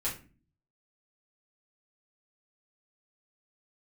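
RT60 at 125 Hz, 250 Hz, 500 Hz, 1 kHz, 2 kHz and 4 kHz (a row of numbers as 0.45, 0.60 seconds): 0.80, 0.70, 0.40, 0.30, 0.35, 0.25 seconds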